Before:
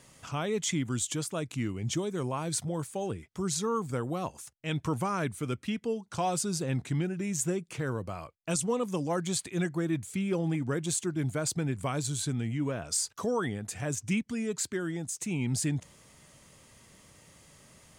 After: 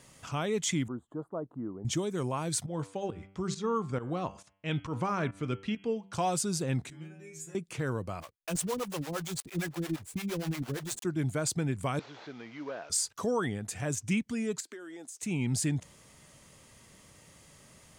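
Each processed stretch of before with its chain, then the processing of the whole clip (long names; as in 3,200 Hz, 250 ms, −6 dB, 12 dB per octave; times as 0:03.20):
0:00.88–0:01.85: inverse Chebyshev low-pass filter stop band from 2,200 Hz + parametric band 96 Hz −15 dB 1.6 octaves
0:02.66–0:06.13: low-pass filter 4,700 Hz + hum removal 97.16 Hz, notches 34 + fake sidechain pumping 136 BPM, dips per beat 1, −13 dB, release 165 ms
0:06.90–0:07.55: low-shelf EQ 140 Hz −6.5 dB + stiff-string resonator 78 Hz, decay 0.74 s, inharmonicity 0.002
0:08.20–0:11.05: one scale factor per block 3 bits + two-band tremolo in antiphase 8.7 Hz, depth 100%, crossover 400 Hz
0:11.99–0:12.90: linear delta modulator 32 kbit/s, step −47.5 dBFS + high-pass filter 490 Hz + high-shelf EQ 4,300 Hz −11 dB
0:14.60–0:15.23: high-pass filter 300 Hz 24 dB per octave + downward compressor 8 to 1, threshold −41 dBFS
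whole clip: no processing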